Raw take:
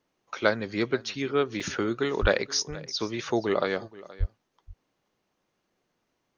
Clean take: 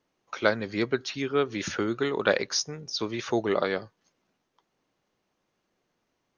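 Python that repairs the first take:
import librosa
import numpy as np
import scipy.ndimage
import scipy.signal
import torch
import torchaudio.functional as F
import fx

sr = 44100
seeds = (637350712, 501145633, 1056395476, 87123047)

y = fx.fix_deplosive(x, sr, at_s=(2.21, 4.19))
y = fx.fix_interpolate(y, sr, at_s=(1.6,), length_ms=3.6)
y = fx.fix_echo_inverse(y, sr, delay_ms=475, level_db=-19.5)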